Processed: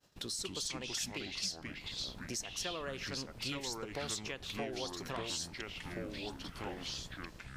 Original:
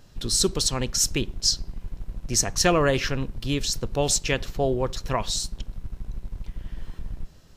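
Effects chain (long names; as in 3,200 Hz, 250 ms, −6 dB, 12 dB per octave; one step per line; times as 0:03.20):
downward expander −43 dBFS
high-pass filter 380 Hz 6 dB per octave
downward compressor 6 to 1, threshold −38 dBFS, peak gain reduction 19.5 dB
delay with pitch and tempo change per echo 183 ms, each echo −4 semitones, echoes 3
level −1.5 dB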